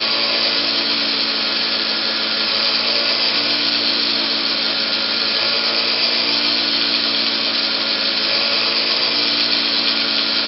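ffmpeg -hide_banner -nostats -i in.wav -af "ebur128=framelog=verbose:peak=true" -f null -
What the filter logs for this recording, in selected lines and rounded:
Integrated loudness:
  I:         -15.2 LUFS
  Threshold: -25.1 LUFS
Loudness range:
  LRA:         0.4 LU
  Threshold: -35.2 LUFS
  LRA low:   -15.4 LUFS
  LRA high:  -15.0 LUFS
True peak:
  Peak:       -2.6 dBFS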